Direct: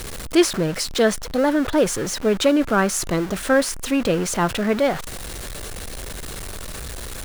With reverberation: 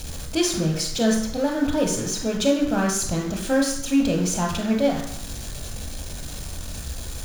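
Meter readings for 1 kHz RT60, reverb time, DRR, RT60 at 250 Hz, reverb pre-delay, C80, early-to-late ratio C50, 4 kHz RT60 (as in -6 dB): 0.65 s, 0.70 s, 1.5 dB, 0.70 s, 20 ms, 8.5 dB, 5.5 dB, 0.65 s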